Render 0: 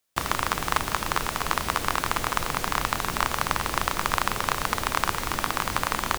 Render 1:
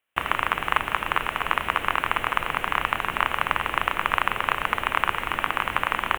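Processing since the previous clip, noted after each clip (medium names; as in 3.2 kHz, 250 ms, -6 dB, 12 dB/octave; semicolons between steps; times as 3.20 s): FFT filter 180 Hz 0 dB, 2.9 kHz +11 dB, 4.7 kHz -20 dB, 9.5 kHz -5 dB; trim -5 dB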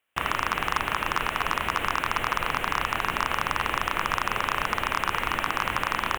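in parallel at +1.5 dB: peak limiter -11 dBFS, peak gain reduction 9.5 dB; on the sum: hard clipper -7.5 dBFS, distortion -11 dB; trim -4.5 dB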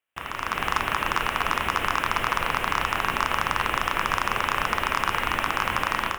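level rider gain up to 11.5 dB; on a send at -11 dB: reverberation RT60 0.60 s, pre-delay 5 ms; on the sum: trim -8 dB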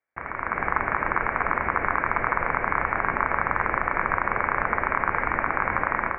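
rippled Chebyshev low-pass 2.3 kHz, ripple 3 dB; trim +3 dB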